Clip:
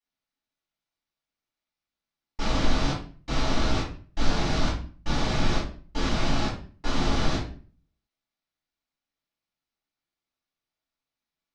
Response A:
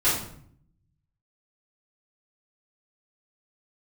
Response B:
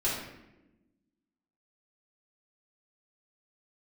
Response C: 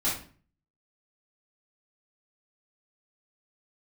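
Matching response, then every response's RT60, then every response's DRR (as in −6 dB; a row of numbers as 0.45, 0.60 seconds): C; 0.60, 1.0, 0.40 seconds; −14.0, −8.5, −10.5 decibels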